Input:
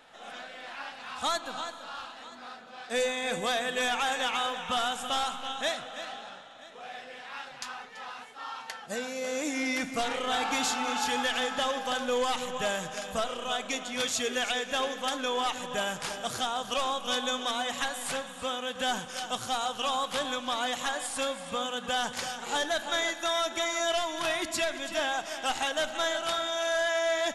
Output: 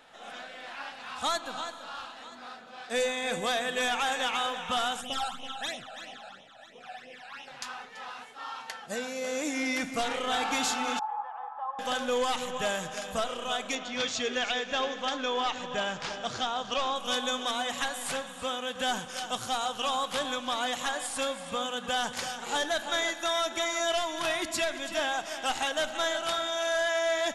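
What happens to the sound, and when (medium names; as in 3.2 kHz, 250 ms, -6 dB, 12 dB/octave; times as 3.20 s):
5.01–7.48 s: phase shifter stages 12, 3 Hz, lowest notch 330–1500 Hz
10.99–11.79 s: Butterworth band-pass 930 Hz, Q 2.7
13.75–16.96 s: low-pass 6.1 kHz 24 dB/octave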